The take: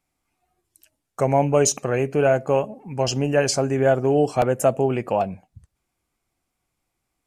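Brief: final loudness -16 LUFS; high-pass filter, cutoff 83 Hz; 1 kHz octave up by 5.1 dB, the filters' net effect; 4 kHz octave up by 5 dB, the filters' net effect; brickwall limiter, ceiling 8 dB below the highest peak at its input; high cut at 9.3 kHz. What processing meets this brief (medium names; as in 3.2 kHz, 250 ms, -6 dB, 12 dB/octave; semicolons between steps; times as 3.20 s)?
high-pass 83 Hz; low-pass 9.3 kHz; peaking EQ 1 kHz +7.5 dB; peaking EQ 4 kHz +7 dB; trim +6 dB; peak limiter -4 dBFS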